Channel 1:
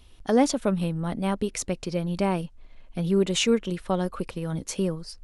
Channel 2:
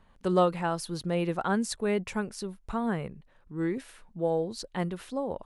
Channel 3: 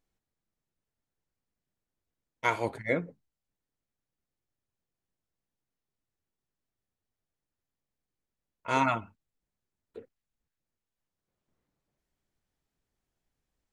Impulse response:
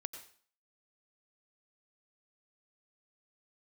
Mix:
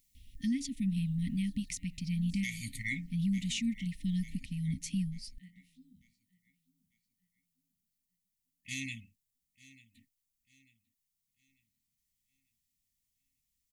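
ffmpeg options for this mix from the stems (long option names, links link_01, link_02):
-filter_complex "[0:a]adelay=150,volume=-6dB[link_01];[1:a]flanger=delay=20:depth=5.9:speed=0.39,bandreject=frequency=118:width_type=h:width=4,bandreject=frequency=236:width_type=h:width=4,bandreject=frequency=354:width_type=h:width=4,bandreject=frequency=472:width_type=h:width=4,bandreject=frequency=590:width_type=h:width=4,bandreject=frequency=708:width_type=h:width=4,bandreject=frequency=826:width_type=h:width=4,bandreject=frequency=944:width_type=h:width=4,bandreject=frequency=1062:width_type=h:width=4,bandreject=frequency=1180:width_type=h:width=4,bandreject=frequency=1298:width_type=h:width=4,bandreject=frequency=1416:width_type=h:width=4,bandreject=frequency=1534:width_type=h:width=4,bandreject=frequency=1652:width_type=h:width=4,bandreject=frequency=1770:width_type=h:width=4,bandreject=frequency=1888:width_type=h:width=4,bandreject=frequency=2006:width_type=h:width=4,bandreject=frequency=2124:width_type=h:width=4,bandreject=frequency=2242:width_type=h:width=4,bandreject=frequency=2360:width_type=h:width=4,bandreject=frequency=2478:width_type=h:width=4,bandreject=frequency=2596:width_type=h:width=4,bandreject=frequency=2714:width_type=h:width=4,bandreject=frequency=2832:width_type=h:width=4,bandreject=frequency=2950:width_type=h:width=4,bandreject=frequency=3068:width_type=h:width=4,bandreject=frequency=3186:width_type=h:width=4,bandreject=frequency=3304:width_type=h:width=4,bandreject=frequency=3422:width_type=h:width=4,bandreject=frequency=3540:width_type=h:width=4,bandreject=frequency=3658:width_type=h:width=4,bandreject=frequency=3776:width_type=h:width=4,bandreject=frequency=3894:width_type=h:width=4,adelay=650,volume=-20dB,asplit=2[link_02][link_03];[link_03]volume=-19dB[link_04];[2:a]crystalizer=i=6:c=0,volume=-0.5dB,afade=type=out:start_time=4.1:duration=0.36:silence=0.334965,asplit=3[link_05][link_06][link_07];[link_06]volume=-22dB[link_08];[link_07]apad=whole_len=269404[link_09];[link_02][link_09]sidechaincompress=threshold=-40dB:ratio=8:attack=16:release=210[link_10];[link_04][link_08]amix=inputs=2:normalize=0,aecho=0:1:894|1788|2682|3576|4470:1|0.36|0.13|0.0467|0.0168[link_11];[link_01][link_10][link_05][link_11]amix=inputs=4:normalize=0,afftfilt=real='re*(1-between(b*sr/4096,280,1800))':imag='im*(1-between(b*sr/4096,280,1800))':win_size=4096:overlap=0.75,bass=frequency=250:gain=4,treble=frequency=4000:gain=0,alimiter=level_in=1dB:limit=-24dB:level=0:latency=1:release=400,volume=-1dB"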